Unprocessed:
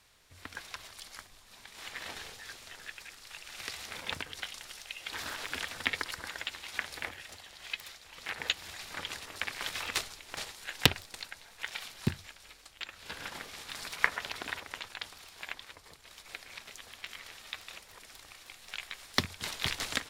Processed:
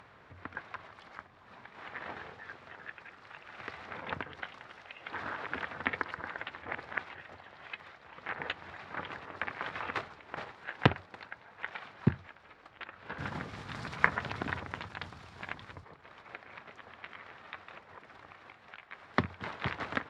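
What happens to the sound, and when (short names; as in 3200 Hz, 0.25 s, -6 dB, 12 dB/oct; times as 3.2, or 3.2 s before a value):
6.62–7.15 reverse
13.18–15.84 tone controls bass +14 dB, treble +14 dB
18.46–18.92 fade out quadratic, to -7.5 dB
whole clip: Chebyshev band-pass 110–1400 Hz, order 2; upward compressor, threshold -52 dBFS; gain +4.5 dB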